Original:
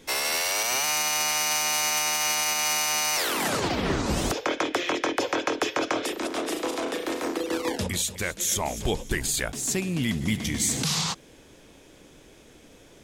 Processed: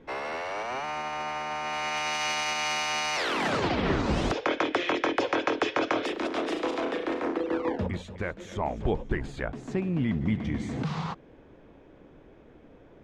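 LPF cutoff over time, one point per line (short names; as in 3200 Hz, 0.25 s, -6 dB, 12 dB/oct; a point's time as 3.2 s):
1.54 s 1400 Hz
2.19 s 3500 Hz
6.64 s 3500 Hz
7.77 s 1400 Hz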